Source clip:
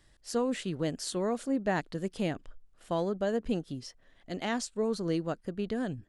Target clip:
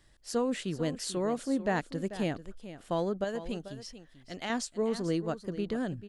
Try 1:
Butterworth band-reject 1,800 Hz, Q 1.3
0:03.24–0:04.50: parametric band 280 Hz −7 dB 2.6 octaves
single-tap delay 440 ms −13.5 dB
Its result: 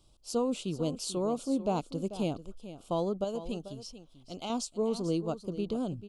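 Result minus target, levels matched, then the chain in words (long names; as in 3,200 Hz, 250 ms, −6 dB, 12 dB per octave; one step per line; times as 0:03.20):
2,000 Hz band −13.0 dB
0:03.24–0:04.50: parametric band 280 Hz −7 dB 2.6 octaves
single-tap delay 440 ms −13.5 dB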